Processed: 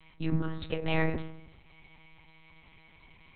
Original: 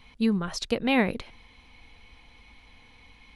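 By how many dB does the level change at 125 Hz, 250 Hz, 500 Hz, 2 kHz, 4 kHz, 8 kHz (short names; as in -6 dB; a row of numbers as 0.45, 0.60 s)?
+3.0 dB, -8.0 dB, -5.5 dB, -5.5 dB, -8.5 dB, under -35 dB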